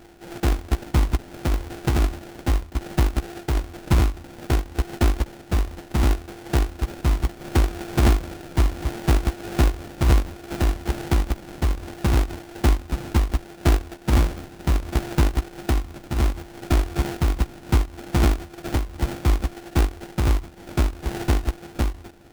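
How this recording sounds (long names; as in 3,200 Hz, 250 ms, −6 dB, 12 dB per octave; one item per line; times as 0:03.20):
a buzz of ramps at a fixed pitch in blocks of 128 samples
phaser sweep stages 6, 0.67 Hz, lowest notch 620–1,400 Hz
aliases and images of a low sample rate 1,100 Hz, jitter 20%
amplitude modulation by smooth noise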